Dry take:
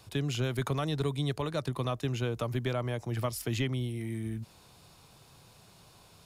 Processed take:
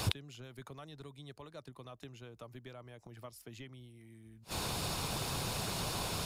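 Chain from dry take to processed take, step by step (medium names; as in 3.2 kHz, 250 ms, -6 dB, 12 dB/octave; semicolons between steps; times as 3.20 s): harmonic-percussive split percussive +5 dB; inverted gate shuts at -31 dBFS, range -38 dB; trim +17.5 dB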